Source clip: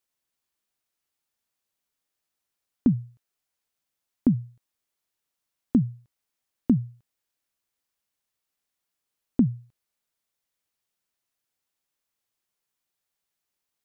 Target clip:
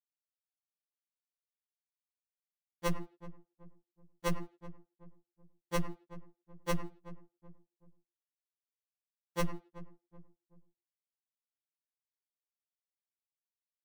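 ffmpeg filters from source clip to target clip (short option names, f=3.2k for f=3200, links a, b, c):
-filter_complex "[0:a]equalizer=f=62:w=0.49:g=7,acrusher=bits=3:dc=4:mix=0:aa=0.000001,acompressor=mode=upward:threshold=-17dB:ratio=2.5,asplit=2[a][b];[b]adelay=100,highpass=300,lowpass=3.4k,asoftclip=type=hard:threshold=-13dB,volume=-8dB[c];[a][c]amix=inputs=2:normalize=0,afftdn=nr=16:nf=-39,asplit=2[d][e];[e]adelay=379,lowpass=f=850:p=1,volume=-21dB,asplit=2[f][g];[g]adelay=379,lowpass=f=850:p=1,volume=0.4,asplit=2[h][i];[i]adelay=379,lowpass=f=850:p=1,volume=0.4[j];[f][h][j]amix=inputs=3:normalize=0[k];[d][k]amix=inputs=2:normalize=0,aeval=exprs='(tanh(4.47*val(0)+0.6)-tanh(0.6))/4.47':c=same,alimiter=limit=-14dB:level=0:latency=1:release=494,afftfilt=real='re*2.83*eq(mod(b,8),0)':imag='im*2.83*eq(mod(b,8),0)':win_size=2048:overlap=0.75"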